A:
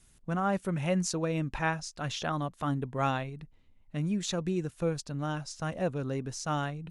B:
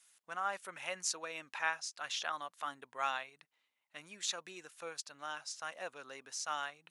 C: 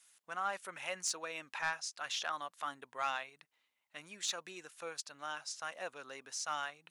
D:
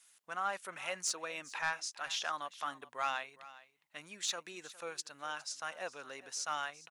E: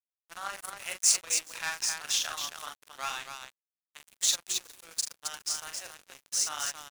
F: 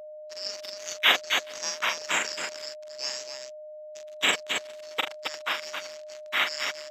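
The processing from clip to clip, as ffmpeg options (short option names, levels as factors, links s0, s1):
-af "highpass=1100,volume=0.891"
-af "asoftclip=type=tanh:threshold=0.0531,volume=1.12"
-af "aecho=1:1:410:0.126,volume=1.12"
-af "aecho=1:1:40.82|268.2:0.631|0.631,crystalizer=i=6:c=0,aeval=exprs='sgn(val(0))*max(abs(val(0))-0.0211,0)':c=same,volume=0.75"
-af "afftfilt=real='real(if(lt(b,736),b+184*(1-2*mod(floor(b/184),2)),b),0)':imag='imag(if(lt(b,736),b+184*(1-2*mod(floor(b/184),2)),b),0)':win_size=2048:overlap=0.75,aeval=exprs='val(0)+0.00631*sin(2*PI*610*n/s)':c=same,highpass=310,lowpass=5500,volume=1.68"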